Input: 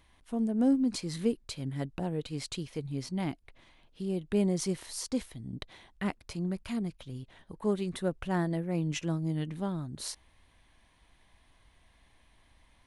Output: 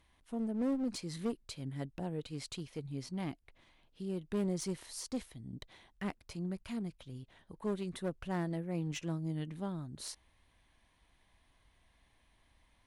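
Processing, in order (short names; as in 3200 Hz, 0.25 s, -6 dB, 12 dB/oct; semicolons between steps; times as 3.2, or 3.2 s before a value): one-sided clip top -30 dBFS, bottom -20 dBFS; gain -5.5 dB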